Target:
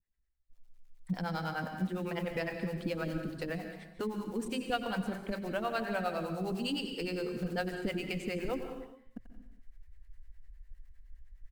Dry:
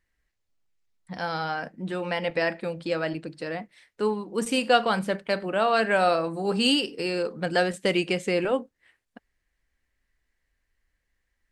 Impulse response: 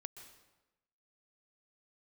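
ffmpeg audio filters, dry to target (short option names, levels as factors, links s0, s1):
-filter_complex "[0:a]bass=f=250:g=13,treble=f=4000:g=-2,aecho=1:1:88|176|264:0.168|0.0487|0.0141,acompressor=threshold=0.0316:ratio=5,acrusher=bits=7:mode=log:mix=0:aa=0.000001,asubboost=boost=6.5:cutoff=53,agate=range=0.141:threshold=0.002:ratio=16:detection=peak,acrossover=split=410[s0][s1];[s0]aeval=exprs='val(0)*(1-1/2+1/2*cos(2*PI*9.8*n/s))':c=same[s2];[s1]aeval=exprs='val(0)*(1-1/2-1/2*cos(2*PI*9.8*n/s))':c=same[s3];[s2][s3]amix=inputs=2:normalize=0,bandreject=f=50:t=h:w=6,bandreject=f=100:t=h:w=6,bandreject=f=150:t=h:w=6[s4];[1:a]atrim=start_sample=2205,afade=t=out:st=0.43:d=0.01,atrim=end_sample=19404,asetrate=39690,aresample=44100[s5];[s4][s5]afir=irnorm=-1:irlink=0,volume=2.37"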